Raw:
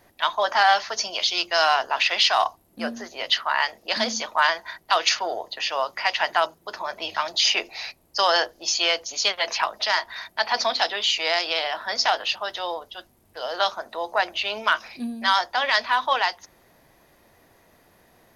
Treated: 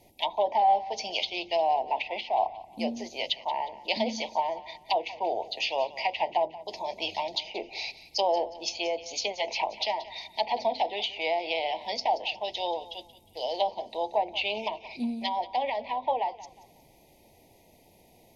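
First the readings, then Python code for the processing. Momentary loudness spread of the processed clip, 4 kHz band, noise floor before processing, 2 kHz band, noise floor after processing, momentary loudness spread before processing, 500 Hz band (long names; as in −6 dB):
8 LU, −10.0 dB, −60 dBFS, −13.0 dB, −59 dBFS, 12 LU, −1.0 dB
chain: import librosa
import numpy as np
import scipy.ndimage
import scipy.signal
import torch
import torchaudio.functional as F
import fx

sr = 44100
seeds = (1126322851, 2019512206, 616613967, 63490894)

y = fx.env_lowpass_down(x, sr, base_hz=900.0, full_db=-17.5)
y = scipy.signal.sosfilt(scipy.signal.ellip(3, 1.0, 80, [890.0, 2200.0], 'bandstop', fs=sr, output='sos'), y)
y = fx.echo_thinned(y, sr, ms=180, feedback_pct=37, hz=420.0, wet_db=-16)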